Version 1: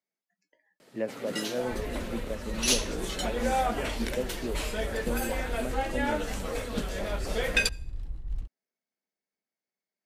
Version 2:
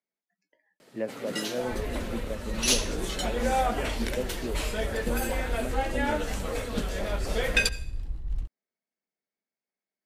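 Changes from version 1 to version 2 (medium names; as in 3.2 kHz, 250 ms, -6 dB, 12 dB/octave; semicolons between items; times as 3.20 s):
speech: add distance through air 71 m; first sound: send +11.5 dB; second sound: send +10.0 dB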